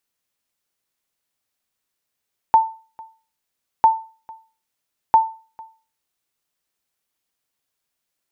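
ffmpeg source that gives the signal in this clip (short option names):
-f lavfi -i "aevalsrc='0.562*(sin(2*PI*892*mod(t,1.3))*exp(-6.91*mod(t,1.3)/0.36)+0.0531*sin(2*PI*892*max(mod(t,1.3)-0.45,0))*exp(-6.91*max(mod(t,1.3)-0.45,0)/0.36))':d=3.9:s=44100"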